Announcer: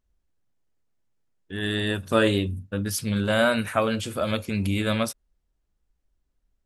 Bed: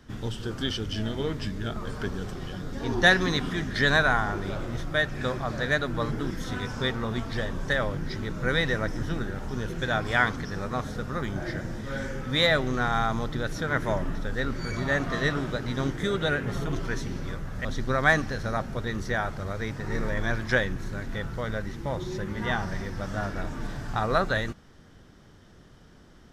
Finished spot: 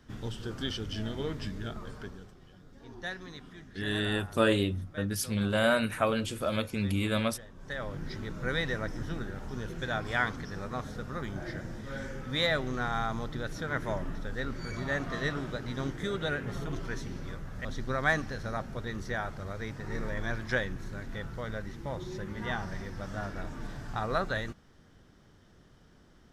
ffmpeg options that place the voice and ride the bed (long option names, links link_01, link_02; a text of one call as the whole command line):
ffmpeg -i stem1.wav -i stem2.wav -filter_complex "[0:a]adelay=2250,volume=-4.5dB[link_01];[1:a]volume=8.5dB,afade=type=out:start_time=1.56:duration=0.78:silence=0.188365,afade=type=in:start_time=7.55:duration=0.49:silence=0.211349[link_02];[link_01][link_02]amix=inputs=2:normalize=0" out.wav